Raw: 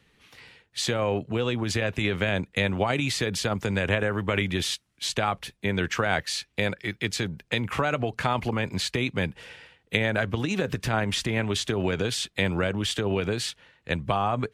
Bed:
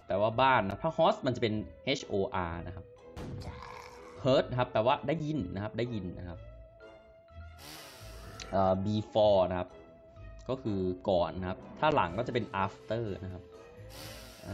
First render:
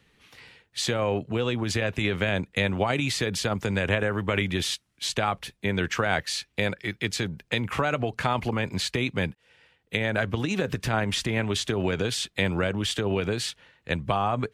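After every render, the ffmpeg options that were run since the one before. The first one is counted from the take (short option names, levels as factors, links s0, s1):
-filter_complex "[0:a]asplit=2[s0][s1];[s0]atrim=end=9.35,asetpts=PTS-STARTPTS,afade=t=out:st=9.346:d=0.004:c=hsin[s2];[s1]atrim=start=9.35,asetpts=PTS-STARTPTS,afade=t=in:d=0.84[s3];[s2][s3]concat=n=2:v=0:a=1"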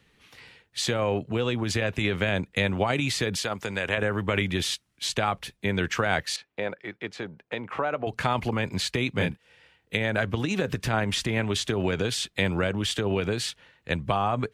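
-filter_complex "[0:a]asettb=1/sr,asplit=3[s0][s1][s2];[s0]atrim=end=3.364[s3];[s1]atrim=start=3.36:end=3.98,asetpts=PTS-STARTPTS,afade=t=in:d=0.004:c=qsin,afade=t=out:st=0.616:d=0.004:c=qsin,lowshelf=f=320:g=-10.5[s4];[s2]atrim=start=3.976[s5];[s3][s4]acrossfade=d=0.004:c1=hsin:c2=qsin[s6];[s6][s5]acrossfade=d=0.004:c1=qsin:c2=hsin,asettb=1/sr,asplit=3[s7][s8][s9];[s7]atrim=end=6.364[s10];[s8]atrim=start=6.36:end=8.07,asetpts=PTS-STARTPTS,afade=t=in:d=0.004:c=qsin,afade=t=out:st=1.706:d=0.004:c=qsin,bandpass=f=710:t=q:w=0.72[s11];[s9]atrim=start=8.066[s12];[s10][s11]acrossfade=d=0.004:c1=hsin:c2=qsin[s13];[s13][s12]acrossfade=d=0.004:c1=qsin:c2=hsin,asettb=1/sr,asplit=3[s14][s15][s16];[s14]atrim=end=9.154[s17];[s15]atrim=start=9.15:end=9.97,asetpts=PTS-STARTPTS,afade=t=in:d=0.004:c=qsin,afade=t=out:st=0.816:d=0.004:c=qsin,asplit=2[s18][s19];[s19]adelay=29,volume=0.708[s20];[s18][s20]amix=inputs=2:normalize=0,atrim=end_sample=36162[s21];[s16]atrim=start=9.966[s22];[s17][s21]acrossfade=d=0.004:c1=hsin:c2=qsin[s23];[s23][s22]acrossfade=d=0.004:c1=qsin:c2=hsin"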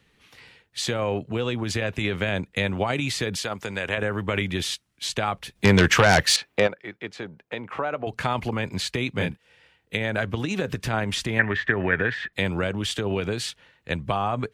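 -filter_complex "[0:a]asplit=3[s0][s1][s2];[s0]afade=t=out:st=5.55:d=0.02[s3];[s1]aeval=exprs='0.316*sin(PI/2*2.51*val(0)/0.316)':c=same,afade=t=in:st=5.55:d=0.02,afade=t=out:st=6.66:d=0.02[s4];[s2]afade=t=in:st=6.66:d=0.02[s5];[s3][s4][s5]amix=inputs=3:normalize=0,asettb=1/sr,asplit=3[s6][s7][s8];[s6]atrim=end=11.394[s9];[s7]atrim=start=11.39:end=12.33,asetpts=PTS-STARTPTS,afade=t=in:d=0.004:c=qsin,afade=t=out:st=0.936:d=0.004:c=qsin,lowpass=f=1800:t=q:w=15[s10];[s8]atrim=start=12.326[s11];[s9][s10]acrossfade=d=0.004:c1=hsin:c2=qsin[s12];[s12][s11]acrossfade=d=0.004:c1=qsin:c2=hsin"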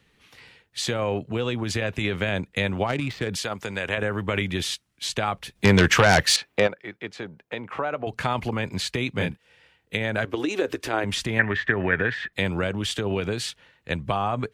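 -filter_complex "[0:a]asettb=1/sr,asplit=3[s0][s1][s2];[s0]atrim=end=2.874[s3];[s1]atrim=start=2.87:end=3.29,asetpts=PTS-STARTPTS,afade=t=in:d=0.004:c=qsin,afade=t=out:st=0.416:d=0.004:c=qsin,adynamicsmooth=sensitivity=1.5:basefreq=1500[s4];[s2]atrim=start=3.286[s5];[s3][s4]acrossfade=d=0.004:c1=hsin:c2=qsin[s6];[s6][s5]acrossfade=d=0.004:c1=qsin:c2=hsin,asettb=1/sr,asplit=3[s7][s8][s9];[s7]atrim=end=10.254[s10];[s8]atrim=start=10.25:end=11.04,asetpts=PTS-STARTPTS,afade=t=in:d=0.004:c=qsin,afade=t=out:st=0.786:d=0.004:c=qsin,lowshelf=f=240:t=q:w=3:g=-10[s11];[s9]atrim=start=11.036[s12];[s10][s11]acrossfade=d=0.004:c1=hsin:c2=qsin[s13];[s13][s12]acrossfade=d=0.004:c1=qsin:c2=hsin"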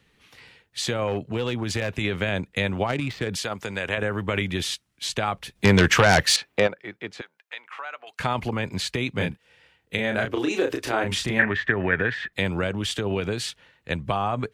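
-filter_complex "[0:a]asettb=1/sr,asplit=3[s0][s1][s2];[s0]atrim=end=1.074[s3];[s1]atrim=start=1.07:end=1.89,asetpts=PTS-STARTPTS,afade=t=in:d=0.004:c=qsin,afade=t=out:st=0.816:d=0.004:c=qsin,asoftclip=type=hard:threshold=0.106[s4];[s2]atrim=start=1.886[s5];[s3][s4]acrossfade=d=0.004:c1=hsin:c2=qsin[s6];[s6][s5]acrossfade=d=0.004:c1=qsin:c2=hsin,asettb=1/sr,asplit=3[s7][s8][s9];[s7]atrim=end=7.214[s10];[s8]atrim=start=7.21:end=8.2,asetpts=PTS-STARTPTS,afade=t=in:d=0.004:c=qsin,afade=t=out:st=0.986:d=0.004:c=qsin,highpass=1400[s11];[s9]atrim=start=8.196[s12];[s10][s11]acrossfade=d=0.004:c1=hsin:c2=qsin[s13];[s13][s12]acrossfade=d=0.004:c1=qsin:c2=hsin,asettb=1/sr,asplit=3[s14][s15][s16];[s14]atrim=end=9.954[s17];[s15]atrim=start=9.95:end=11.51,asetpts=PTS-STARTPTS,afade=t=in:d=0.004:c=qsin,afade=t=out:st=1.556:d=0.004:c=qsin,asplit=2[s18][s19];[s19]adelay=32,volume=0.596[s20];[s18][s20]amix=inputs=2:normalize=0,atrim=end_sample=68796[s21];[s16]atrim=start=11.506[s22];[s17][s21]acrossfade=d=0.004:c1=hsin:c2=qsin[s23];[s23][s22]acrossfade=d=0.004:c1=qsin:c2=hsin"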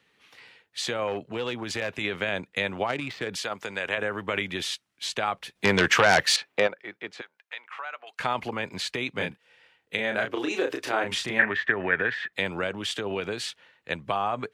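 -af "highpass=f=460:p=1,highshelf=f=5800:g=-6.5"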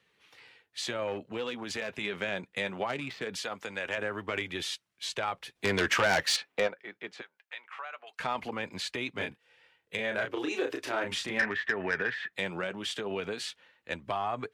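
-af "asoftclip=type=tanh:threshold=0.2,flanger=delay=1.7:depth=3.9:regen=-61:speed=0.2:shape=triangular"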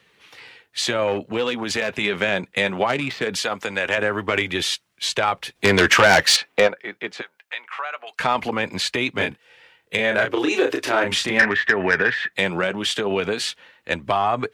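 -af "volume=3.98"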